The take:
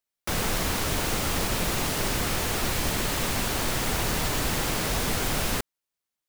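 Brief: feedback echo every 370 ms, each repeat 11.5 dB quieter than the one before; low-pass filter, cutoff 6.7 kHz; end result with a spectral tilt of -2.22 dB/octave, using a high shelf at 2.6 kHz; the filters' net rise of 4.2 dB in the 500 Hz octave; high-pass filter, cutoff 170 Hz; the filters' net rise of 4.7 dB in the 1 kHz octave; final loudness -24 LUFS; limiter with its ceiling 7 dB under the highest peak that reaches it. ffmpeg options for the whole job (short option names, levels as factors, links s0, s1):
-af "highpass=170,lowpass=6700,equalizer=f=500:t=o:g=4,equalizer=f=1000:t=o:g=4,highshelf=f=2600:g=4.5,alimiter=limit=0.106:level=0:latency=1,aecho=1:1:370|740|1110:0.266|0.0718|0.0194,volume=1.58"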